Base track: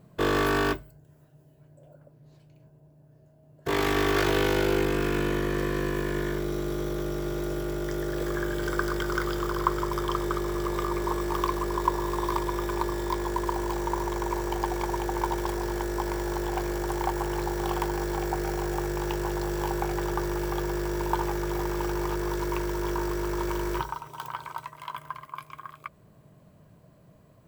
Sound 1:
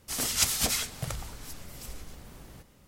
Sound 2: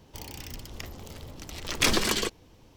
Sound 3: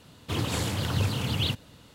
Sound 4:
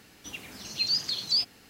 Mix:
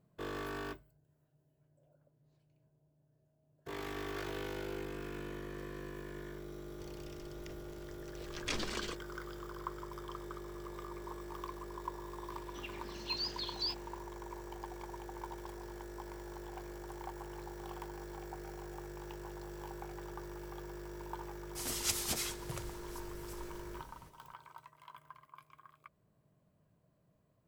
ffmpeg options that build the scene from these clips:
-filter_complex "[0:a]volume=-17dB[a];[2:a]acrossover=split=8300[b][c];[c]acompressor=threshold=-53dB:ratio=4:attack=1:release=60[d];[b][d]amix=inputs=2:normalize=0[e];[4:a]lowpass=3.8k[f];[e]atrim=end=2.76,asetpts=PTS-STARTPTS,volume=-14dB,afade=t=in:d=0.004:c=hsin,afade=t=out:st=2.756:d=0.004:c=hsin,adelay=293706S[g];[f]atrim=end=1.69,asetpts=PTS-STARTPTS,volume=-6.5dB,afade=t=in:d=0.004:c=hsin,afade=t=out:st=1.686:d=0.004:c=hsin,adelay=12300[h];[1:a]atrim=end=2.87,asetpts=PTS-STARTPTS,volume=-9dB,afade=t=in:d=0.004:c=hsin,afade=t=out:st=2.866:d=0.004:c=hsin,adelay=21470[i];[a][g][h][i]amix=inputs=4:normalize=0"

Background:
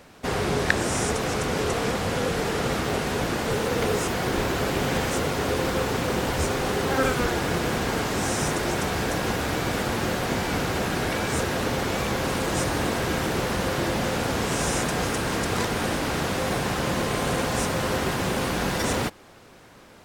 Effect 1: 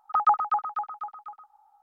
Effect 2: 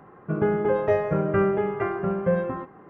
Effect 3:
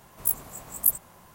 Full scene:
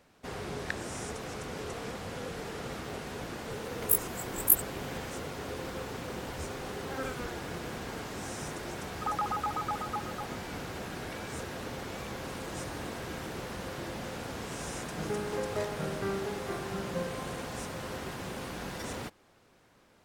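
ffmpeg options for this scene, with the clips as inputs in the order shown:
-filter_complex "[0:a]volume=-13.5dB[a];[1:a]acompressor=threshold=-29dB:ratio=6:attack=3.2:release=140:knee=1:detection=peak[b];[3:a]atrim=end=1.34,asetpts=PTS-STARTPTS,volume=-1dB,afade=t=in:d=0.004:c=hsin,afade=t=out:st=1.336:d=0.004:c=hsin,adelay=3640[c];[b]atrim=end=1.82,asetpts=PTS-STARTPTS,volume=-0.5dB,afade=t=in:d=0.004:c=hsin,afade=t=out:st=1.816:d=0.004:c=hsin,adelay=8920[d];[2:a]atrim=end=2.89,asetpts=PTS-STARTPTS,volume=-12.5dB,afade=t=in:d=0.004:c=hsin,afade=t=out:st=2.886:d=0.004:c=hsin,adelay=14680[e];[a][c][d][e]amix=inputs=4:normalize=0"

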